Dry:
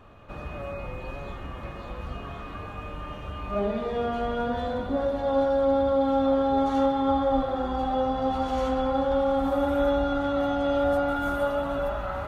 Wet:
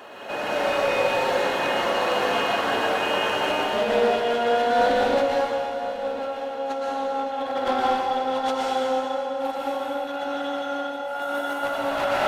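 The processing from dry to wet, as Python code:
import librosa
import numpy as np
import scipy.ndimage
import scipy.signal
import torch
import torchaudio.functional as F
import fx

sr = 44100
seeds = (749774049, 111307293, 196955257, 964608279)

y = fx.rattle_buzz(x, sr, strikes_db=-29.0, level_db=-33.0)
y = scipy.signal.sosfilt(scipy.signal.butter(2, 440.0, 'highpass', fs=sr, output='sos'), y)
y = fx.high_shelf(y, sr, hz=3200.0, db=6.5)
y = fx.over_compress(y, sr, threshold_db=-34.0, ratio=-0.5)
y = fx.notch_comb(y, sr, f0_hz=1200.0)
y = np.clip(y, -10.0 ** (-30.0 / 20.0), 10.0 ** (-30.0 / 20.0))
y = fx.echo_feedback(y, sr, ms=1046, feedback_pct=54, wet_db=-14.5)
y = fx.rev_plate(y, sr, seeds[0], rt60_s=2.1, hf_ratio=0.95, predelay_ms=105, drr_db=-5.0)
y = fx.doppler_dist(y, sr, depth_ms=0.11)
y = y * librosa.db_to_amplitude(7.0)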